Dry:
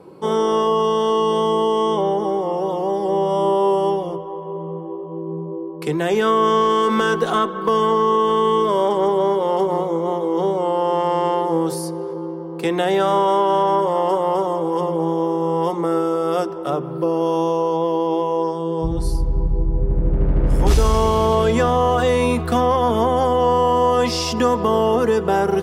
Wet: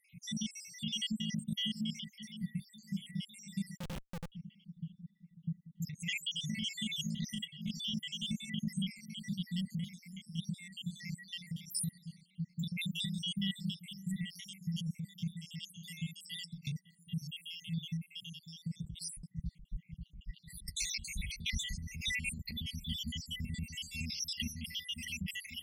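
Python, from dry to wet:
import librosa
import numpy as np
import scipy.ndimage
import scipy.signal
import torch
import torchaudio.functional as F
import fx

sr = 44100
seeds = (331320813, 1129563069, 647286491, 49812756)

p1 = fx.spec_dropout(x, sr, seeds[0], share_pct=77)
p2 = fx.brickwall_bandstop(p1, sr, low_hz=230.0, high_hz=1900.0)
p3 = p2 + fx.echo_bbd(p2, sr, ms=544, stages=4096, feedback_pct=45, wet_db=-15, dry=0)
p4 = fx.over_compress(p3, sr, threshold_db=-35.0, ratio=-1.0)
p5 = fx.schmitt(p4, sr, flips_db=-40.5, at=(3.77, 4.32))
y = F.gain(torch.from_numpy(p5), -2.5).numpy()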